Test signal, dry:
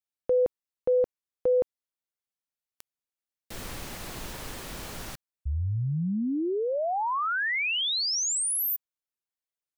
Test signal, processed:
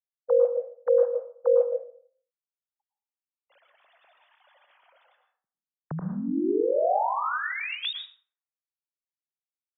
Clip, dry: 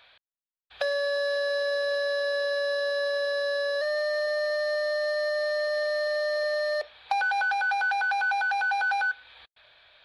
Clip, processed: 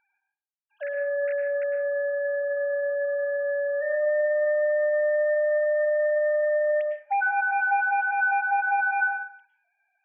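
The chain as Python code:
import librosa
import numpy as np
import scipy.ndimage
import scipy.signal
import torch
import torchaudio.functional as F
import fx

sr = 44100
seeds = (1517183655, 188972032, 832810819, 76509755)

y = fx.sine_speech(x, sr)
y = fx.rev_plate(y, sr, seeds[0], rt60_s=0.51, hf_ratio=0.55, predelay_ms=95, drr_db=4.5)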